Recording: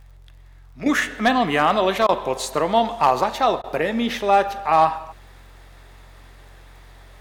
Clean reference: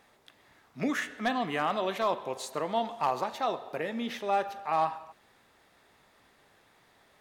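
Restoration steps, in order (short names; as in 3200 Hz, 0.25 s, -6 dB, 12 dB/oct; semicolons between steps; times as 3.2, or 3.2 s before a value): de-click; de-hum 45 Hz, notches 3; interpolate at 2.07/3.62, 18 ms; gain 0 dB, from 0.86 s -11.5 dB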